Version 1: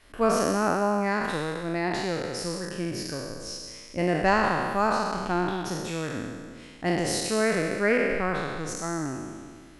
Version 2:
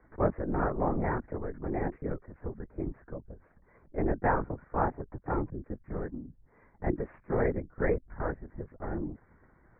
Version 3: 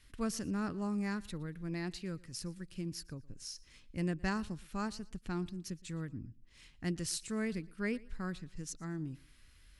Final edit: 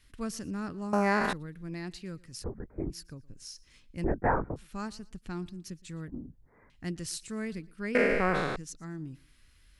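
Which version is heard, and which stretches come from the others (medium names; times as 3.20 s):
3
0.93–1.33 s: from 1
2.44–2.90 s: from 2
4.04–4.56 s: from 2
6.08–6.70 s: from 2
7.95–8.56 s: from 1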